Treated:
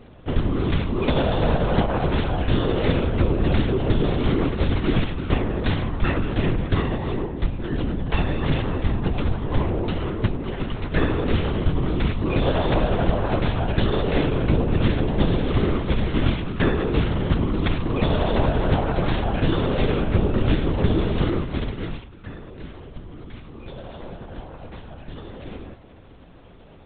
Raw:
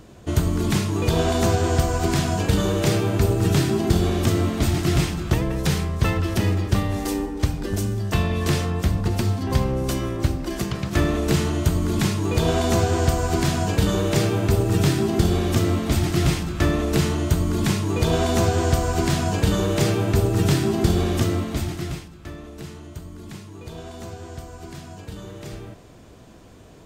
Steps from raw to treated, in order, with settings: LPC vocoder at 8 kHz whisper

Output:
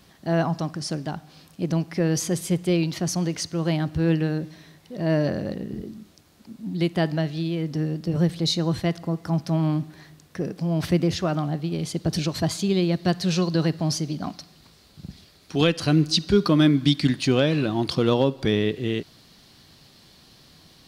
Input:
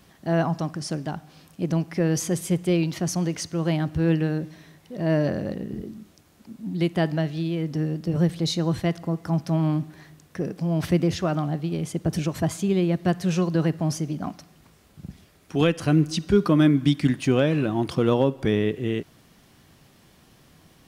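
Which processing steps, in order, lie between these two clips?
peaking EQ 4.3 kHz +5 dB 0.67 oct, from 11.79 s +13.5 dB

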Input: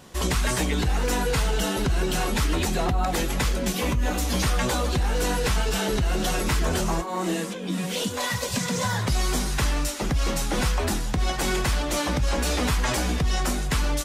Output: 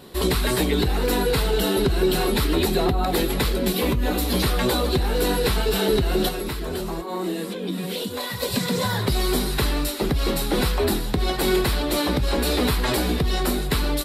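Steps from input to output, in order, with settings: graphic EQ with 31 bands 400 Hz +7 dB, 4 kHz +9 dB, 6.3 kHz -11 dB, 12.5 kHz +10 dB; 6.28–8.40 s: compression, threshold -27 dBFS, peak gain reduction 8.5 dB; peaking EQ 310 Hz +4.5 dB 1.7 oct

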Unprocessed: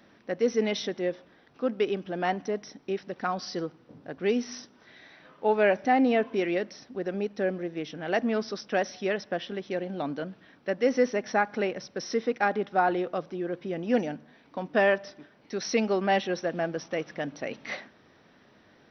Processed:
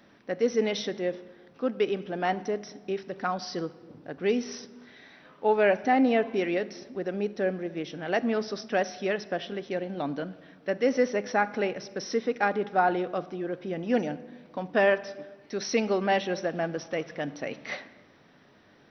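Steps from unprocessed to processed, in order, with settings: simulated room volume 1200 m³, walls mixed, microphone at 0.31 m

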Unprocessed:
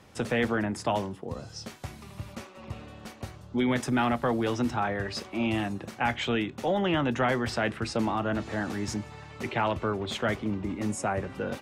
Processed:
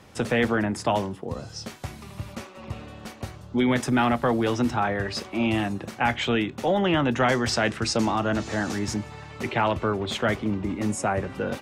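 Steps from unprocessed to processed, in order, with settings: 7.20–8.79 s: peaking EQ 6.3 kHz +9 dB 1.1 oct; trim +4 dB

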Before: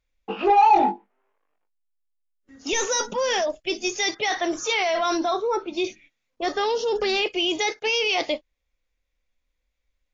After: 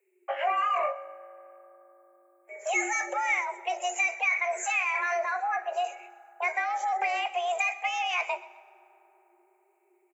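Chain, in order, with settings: FFT filter 230 Hz 0 dB, 800 Hz -11 dB, 1.3 kHz -3 dB, 1.9 kHz +9 dB, 3.1 kHz -24 dB, 5.1 kHz -21 dB, 7.8 kHz +7 dB; compression 2.5:1, threshold -32 dBFS, peak gain reduction 9.5 dB; frequency shift +350 Hz; feedback delay 127 ms, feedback 37%, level -19 dB; on a send at -18 dB: reverberation RT60 4.0 s, pre-delay 3 ms; on the sum: trim +4.5 dB

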